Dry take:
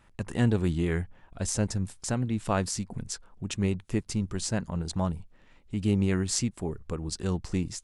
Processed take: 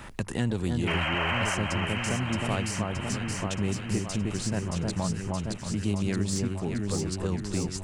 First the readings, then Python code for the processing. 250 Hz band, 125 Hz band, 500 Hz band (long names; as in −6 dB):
0.0 dB, 0.0 dB, +0.5 dB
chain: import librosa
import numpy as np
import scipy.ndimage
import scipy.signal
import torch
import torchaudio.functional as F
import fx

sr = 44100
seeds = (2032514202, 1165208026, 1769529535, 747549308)

p1 = fx.diode_clip(x, sr, knee_db=-13.5)
p2 = fx.spec_paint(p1, sr, seeds[0], shape='noise', start_s=0.87, length_s=0.68, low_hz=520.0, high_hz=3200.0, level_db=-27.0)
p3 = np.clip(10.0 ** (24.5 / 20.0) * p2, -1.0, 1.0) / 10.0 ** (24.5 / 20.0)
p4 = p2 + (p3 * librosa.db_to_amplitude(-10.0))
p5 = fx.echo_alternate(p4, sr, ms=311, hz=1500.0, feedback_pct=78, wet_db=-3)
p6 = fx.band_squash(p5, sr, depth_pct=70)
y = p6 * librosa.db_to_amplitude(-4.5)